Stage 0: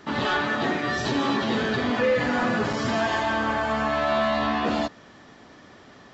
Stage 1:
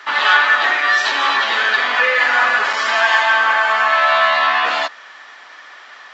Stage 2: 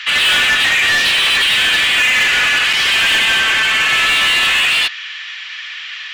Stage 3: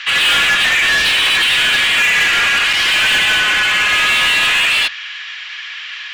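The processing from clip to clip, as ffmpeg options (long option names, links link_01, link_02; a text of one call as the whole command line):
ffmpeg -i in.wav -af "highpass=880,equalizer=frequency=1800:width_type=o:width=2.8:gain=11.5,volume=4dB" out.wav
ffmpeg -i in.wav -filter_complex "[0:a]highpass=frequency=2700:width_type=q:width=2.9,asplit=2[link_01][link_02];[link_02]highpass=frequency=720:poles=1,volume=24dB,asoftclip=type=tanh:threshold=0dB[link_03];[link_01][link_03]amix=inputs=2:normalize=0,lowpass=frequency=4500:poles=1,volume=-6dB,volume=-5.5dB" out.wav
ffmpeg -i in.wav -af "afreqshift=-61" out.wav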